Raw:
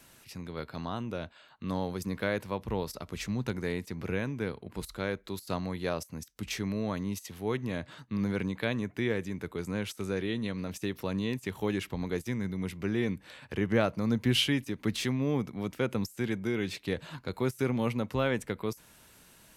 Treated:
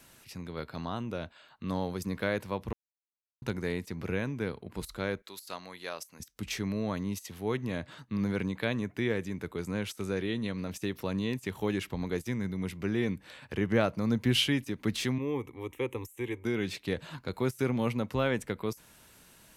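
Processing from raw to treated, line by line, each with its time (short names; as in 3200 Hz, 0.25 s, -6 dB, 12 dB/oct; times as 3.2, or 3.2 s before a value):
2.73–3.42 mute
5.22–6.2 HPF 1300 Hz 6 dB/oct
15.18–16.45 fixed phaser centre 970 Hz, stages 8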